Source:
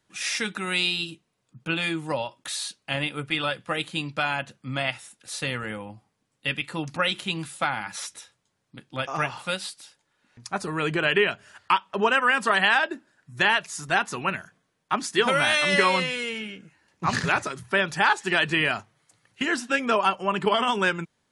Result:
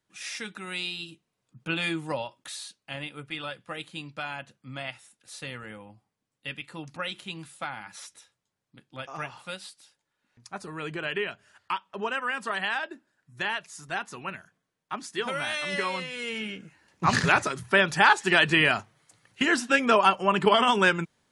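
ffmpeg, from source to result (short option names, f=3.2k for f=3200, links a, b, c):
-af "volume=9.5dB,afade=t=in:st=0.98:d=0.93:silence=0.446684,afade=t=out:st=1.91:d=0.75:silence=0.421697,afade=t=in:st=16.1:d=0.42:silence=0.281838"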